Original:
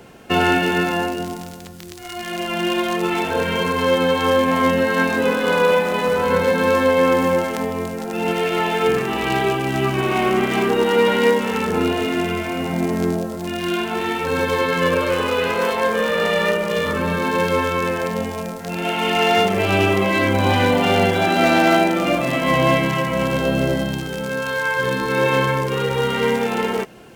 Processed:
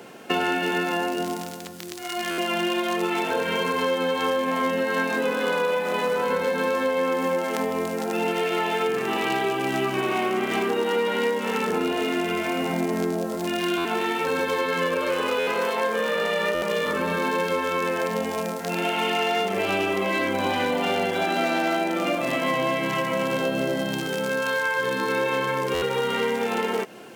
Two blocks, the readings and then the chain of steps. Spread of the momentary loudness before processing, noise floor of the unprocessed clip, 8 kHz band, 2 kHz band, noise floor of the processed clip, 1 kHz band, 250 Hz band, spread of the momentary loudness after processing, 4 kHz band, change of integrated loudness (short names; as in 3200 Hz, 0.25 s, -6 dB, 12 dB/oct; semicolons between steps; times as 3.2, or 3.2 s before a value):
9 LU, -32 dBFS, -4.0 dB, -5.0 dB, -32 dBFS, -5.0 dB, -6.5 dB, 3 LU, -4.5 dB, -5.5 dB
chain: HPF 220 Hz 12 dB/oct; compressor 5:1, threshold -23 dBFS, peak gain reduction 11 dB; stuck buffer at 2.3/13.77/15.39/16.54/25.74, samples 512, times 6; gain +1.5 dB